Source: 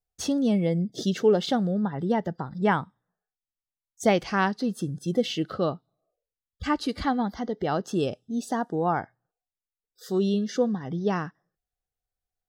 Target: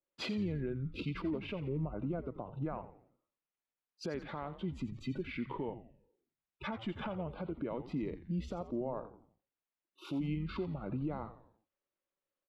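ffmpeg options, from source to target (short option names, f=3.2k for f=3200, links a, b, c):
-filter_complex "[0:a]acrossover=split=200 4200:gain=0.0631 1 0.112[a][b][c];[a][b][c]amix=inputs=3:normalize=0,acompressor=threshold=-37dB:ratio=2,alimiter=level_in=7dB:limit=-24dB:level=0:latency=1:release=236,volume=-7dB,asetrate=33038,aresample=44100,atempo=1.33484,asplit=5[d][e][f][g][h];[e]adelay=86,afreqshift=-110,volume=-12dB[i];[f]adelay=172,afreqshift=-220,volume=-19.3dB[j];[g]adelay=258,afreqshift=-330,volume=-26.7dB[k];[h]adelay=344,afreqshift=-440,volume=-34dB[l];[d][i][j][k][l]amix=inputs=5:normalize=0,adynamicequalizer=threshold=0.00126:dfrequency=1600:dqfactor=0.7:tfrequency=1600:tqfactor=0.7:attack=5:release=100:ratio=0.375:range=2:mode=cutabove:tftype=highshelf,volume=2.5dB"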